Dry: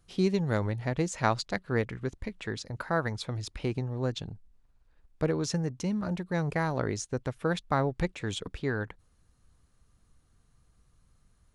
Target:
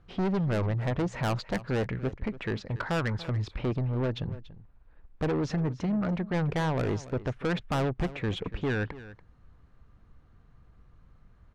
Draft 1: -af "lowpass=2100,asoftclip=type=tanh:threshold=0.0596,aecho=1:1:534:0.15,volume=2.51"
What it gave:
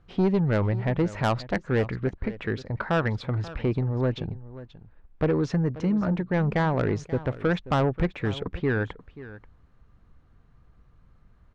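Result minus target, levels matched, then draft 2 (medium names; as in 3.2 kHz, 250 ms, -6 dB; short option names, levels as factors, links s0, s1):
echo 248 ms late; saturation: distortion -6 dB
-af "lowpass=2100,asoftclip=type=tanh:threshold=0.0237,aecho=1:1:286:0.15,volume=2.51"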